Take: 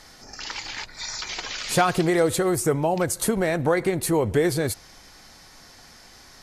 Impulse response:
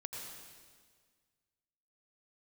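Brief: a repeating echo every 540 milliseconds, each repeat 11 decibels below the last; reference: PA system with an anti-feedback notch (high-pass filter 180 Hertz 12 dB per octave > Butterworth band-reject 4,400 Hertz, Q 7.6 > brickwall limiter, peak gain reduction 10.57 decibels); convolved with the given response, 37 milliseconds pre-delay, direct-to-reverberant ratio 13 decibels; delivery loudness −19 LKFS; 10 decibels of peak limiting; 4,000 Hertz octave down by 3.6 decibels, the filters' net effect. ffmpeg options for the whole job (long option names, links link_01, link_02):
-filter_complex "[0:a]equalizer=frequency=4000:width_type=o:gain=-3,alimiter=limit=-16.5dB:level=0:latency=1,aecho=1:1:540|1080|1620:0.282|0.0789|0.0221,asplit=2[link_01][link_02];[1:a]atrim=start_sample=2205,adelay=37[link_03];[link_02][link_03]afir=irnorm=-1:irlink=0,volume=-12dB[link_04];[link_01][link_04]amix=inputs=2:normalize=0,highpass=180,asuperstop=centerf=4400:order=8:qfactor=7.6,volume=14dB,alimiter=limit=-9.5dB:level=0:latency=1"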